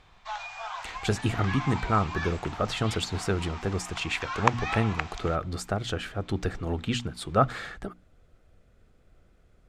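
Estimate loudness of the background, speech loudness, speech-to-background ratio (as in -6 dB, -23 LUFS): -35.0 LUFS, -29.5 LUFS, 5.5 dB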